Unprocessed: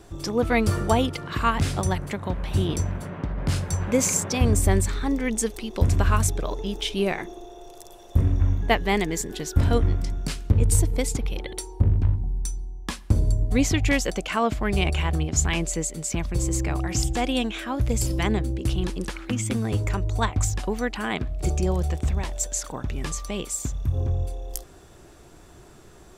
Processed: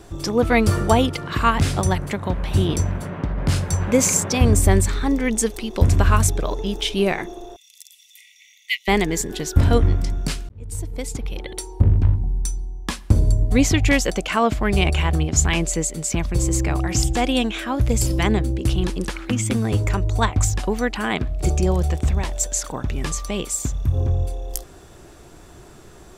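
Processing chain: 7.56–8.88 brick-wall FIR high-pass 1900 Hz; 10.49–11.88 fade in; gain +4.5 dB

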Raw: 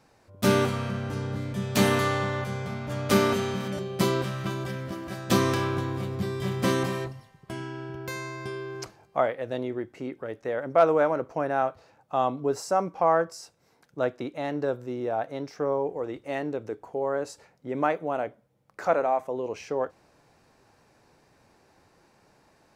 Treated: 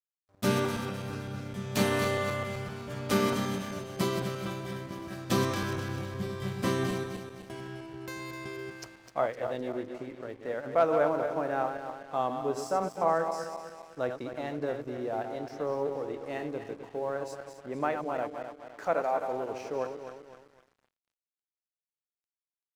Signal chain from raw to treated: regenerating reverse delay 0.128 s, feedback 68%, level -7 dB; crossover distortion -49 dBFS; gain -5 dB

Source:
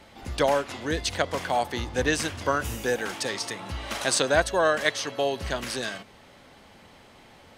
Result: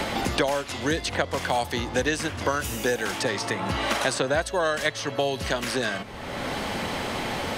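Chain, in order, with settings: three-band squash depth 100%

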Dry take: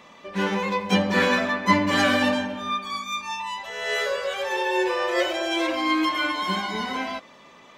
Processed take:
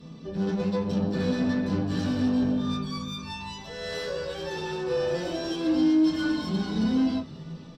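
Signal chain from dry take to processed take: passive tone stack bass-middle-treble 10-0-1; in parallel at +1 dB: negative-ratio compressor -49 dBFS, ratio -1; on the sum: tube stage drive 43 dB, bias 0.45; frequency-shifting echo 0.477 s, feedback 54%, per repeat -99 Hz, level -19 dB; reverb RT60 0.20 s, pre-delay 3 ms, DRR -6 dB; gain +4.5 dB

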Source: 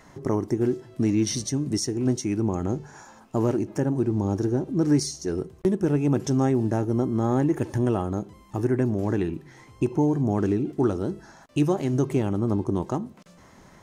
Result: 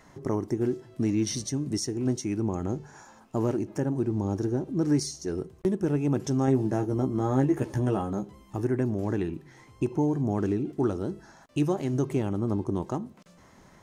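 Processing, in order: 6.46–8.56 doubler 15 ms -4.5 dB; gain -3.5 dB

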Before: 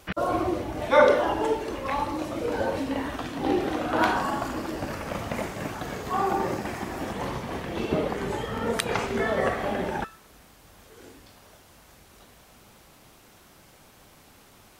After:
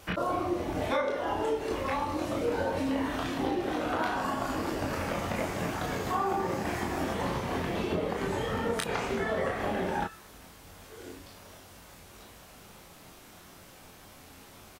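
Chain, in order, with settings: compressor 6:1, threshold -29 dBFS, peak gain reduction 16 dB; early reflections 23 ms -4.5 dB, 34 ms -5 dB

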